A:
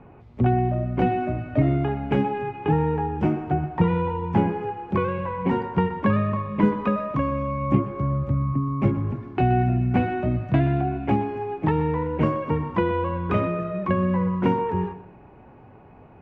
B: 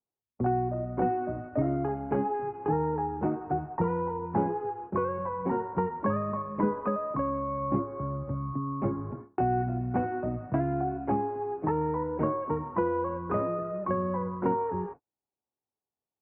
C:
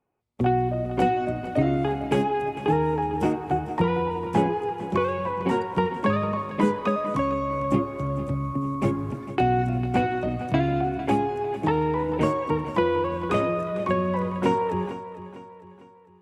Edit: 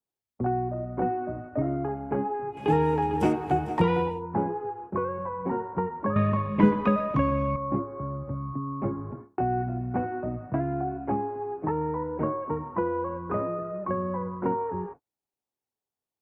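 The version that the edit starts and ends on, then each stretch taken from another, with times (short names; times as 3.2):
B
2.62–4.12 from C, crossfade 0.24 s
6.16–7.56 from A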